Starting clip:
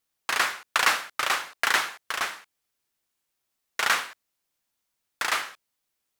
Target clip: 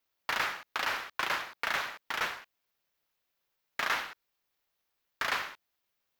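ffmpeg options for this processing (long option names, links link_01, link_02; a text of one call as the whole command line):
ffmpeg -i in.wav -filter_complex "[0:a]highpass=150,equalizer=frequency=8800:width_type=o:width=0.89:gain=-12.5,alimiter=limit=-18dB:level=0:latency=1:release=295,aeval=exprs='val(0)*sin(2*PI*210*n/s)':channel_layout=same,asplit=2[link_01][link_02];[link_02]asoftclip=type=tanh:threshold=-32dB,volume=-4.5dB[link_03];[link_01][link_03]amix=inputs=2:normalize=0" out.wav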